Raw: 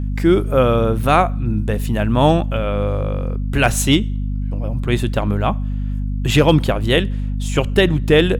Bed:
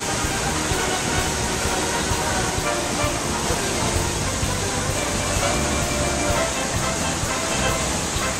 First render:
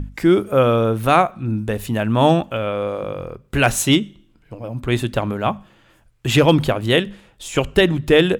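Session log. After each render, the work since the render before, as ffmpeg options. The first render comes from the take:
-af "bandreject=f=50:t=h:w=6,bandreject=f=100:t=h:w=6,bandreject=f=150:t=h:w=6,bandreject=f=200:t=h:w=6,bandreject=f=250:t=h:w=6"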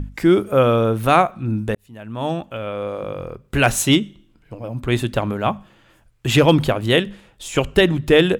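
-filter_complex "[0:a]asplit=2[s0][s1];[s0]atrim=end=1.75,asetpts=PTS-STARTPTS,afade=t=out:st=1.746:d=0.004:c=hsin[s2];[s1]atrim=start=1.75,asetpts=PTS-STARTPTS,afade=t=in:d=1.56[s3];[s2][s3]concat=n=2:v=0:a=1"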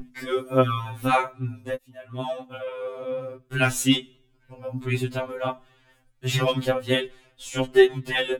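-af "flanger=delay=2.6:depth=1.3:regen=20:speed=1.4:shape=triangular,afftfilt=real='re*2.45*eq(mod(b,6),0)':imag='im*2.45*eq(mod(b,6),0)':win_size=2048:overlap=0.75"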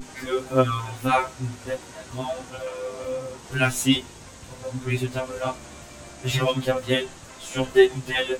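-filter_complex "[1:a]volume=0.0944[s0];[0:a][s0]amix=inputs=2:normalize=0"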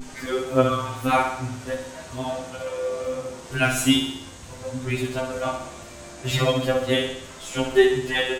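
-filter_complex "[0:a]asplit=2[s0][s1];[s1]adelay=12,volume=0.251[s2];[s0][s2]amix=inputs=2:normalize=0,aecho=1:1:63|126|189|252|315|378|441:0.447|0.255|0.145|0.0827|0.0472|0.0269|0.0153"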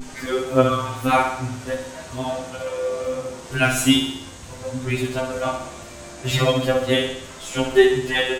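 -af "volume=1.33"

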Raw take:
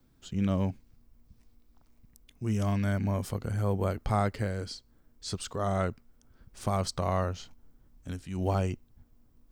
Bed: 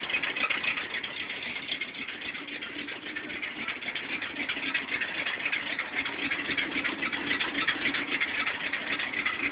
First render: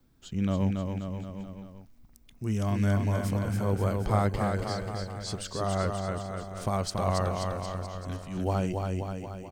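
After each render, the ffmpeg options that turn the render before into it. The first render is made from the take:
-af "aecho=1:1:280|532|758.8|962.9|1147:0.631|0.398|0.251|0.158|0.1"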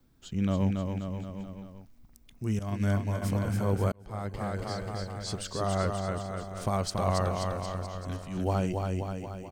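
-filter_complex "[0:a]asettb=1/sr,asplit=3[s0][s1][s2];[s0]atrim=end=2.594[s3];[s1]atrim=start=2.59:end=3.22,asetpts=PTS-STARTPTS,afade=t=in:d=0.004:c=qsin,afade=t=out:st=0.626:d=0.004:c=qsin,agate=range=0.0224:threshold=0.0708:ratio=3:release=100:detection=peak[s4];[s2]atrim=start=3.216[s5];[s3][s4]acrossfade=d=0.004:c1=hsin:c2=qsin[s6];[s6][s5]acrossfade=d=0.004:c1=qsin:c2=hsin,asplit=2[s7][s8];[s7]atrim=end=3.92,asetpts=PTS-STARTPTS,afade=t=out:st=3.916:d=0.004:c=hsin[s9];[s8]atrim=start=3.92,asetpts=PTS-STARTPTS,afade=t=in:d=1.48:c=qsin[s10];[s9][s10]concat=n=2:v=0:a=1"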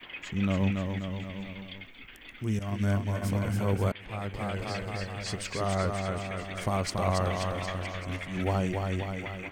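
-filter_complex "[1:a]volume=0.237[s0];[0:a][s0]amix=inputs=2:normalize=0"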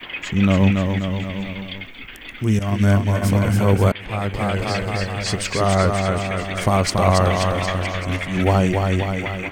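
-af "volume=3.76"

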